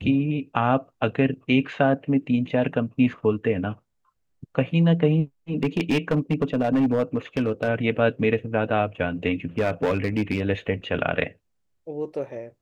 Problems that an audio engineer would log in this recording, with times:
0:05.63–0:07.69: clipping −16 dBFS
0:09.58–0:10.41: clipping −17 dBFS

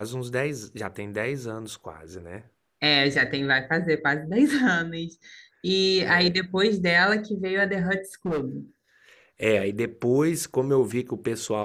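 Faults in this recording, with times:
0:08.25–0:08.44: clipping −23 dBFS

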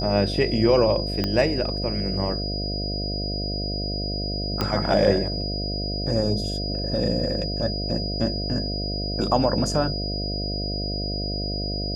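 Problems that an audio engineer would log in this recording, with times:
mains buzz 50 Hz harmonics 14 −29 dBFS
whistle 4,900 Hz −30 dBFS
0:01.24: click −11 dBFS
0:04.61: click −10 dBFS

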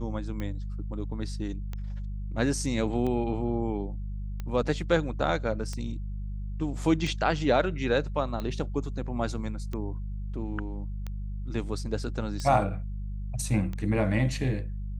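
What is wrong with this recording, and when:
mains hum 50 Hz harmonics 4 −34 dBFS
scratch tick 45 rpm −22 dBFS

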